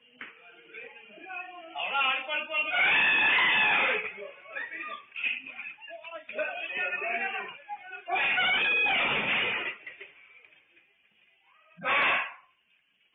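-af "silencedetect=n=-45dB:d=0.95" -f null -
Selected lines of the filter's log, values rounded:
silence_start: 10.45
silence_end: 11.79 | silence_duration: 1.34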